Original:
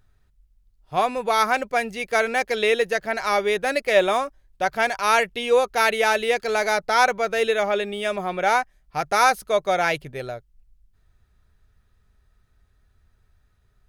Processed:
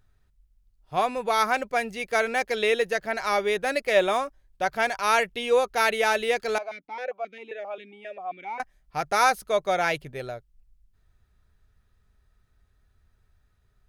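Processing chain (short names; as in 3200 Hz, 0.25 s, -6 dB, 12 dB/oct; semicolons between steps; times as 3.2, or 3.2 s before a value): 6.58–8.6 vowel sequencer 7.5 Hz; gain -3 dB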